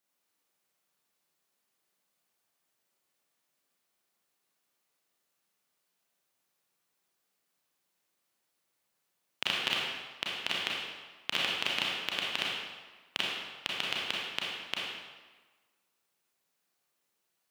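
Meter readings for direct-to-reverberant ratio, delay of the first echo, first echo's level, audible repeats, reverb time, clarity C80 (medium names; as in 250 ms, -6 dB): -4.5 dB, no echo, no echo, no echo, 1.3 s, 1.0 dB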